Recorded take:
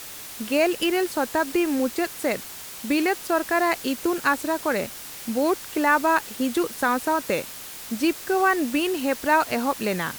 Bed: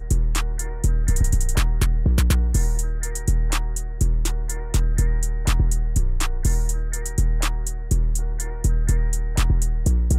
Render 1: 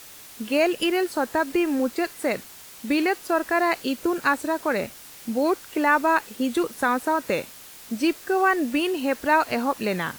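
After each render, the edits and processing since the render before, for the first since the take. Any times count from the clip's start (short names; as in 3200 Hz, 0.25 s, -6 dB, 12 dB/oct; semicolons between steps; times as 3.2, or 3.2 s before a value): noise print and reduce 6 dB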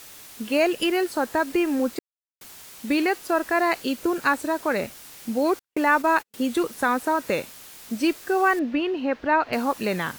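1.99–2.41 mute; 5.59–6.34 gate -31 dBFS, range -46 dB; 8.59–9.53 air absorption 250 m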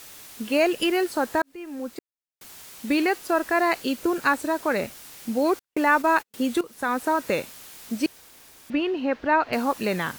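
1.42–2.57 fade in; 6.61–7.05 fade in, from -16.5 dB; 8.06–8.7 room tone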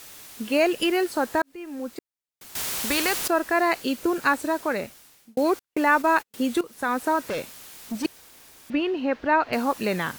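2.55–3.28 spectral compressor 2:1; 4.54–5.37 fade out; 7.19–8.05 hard clip -25.5 dBFS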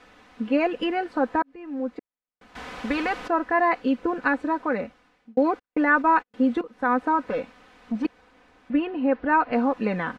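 LPF 1800 Hz 12 dB/oct; comb 4 ms, depth 65%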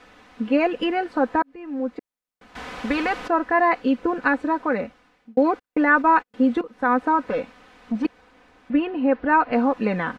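gain +2.5 dB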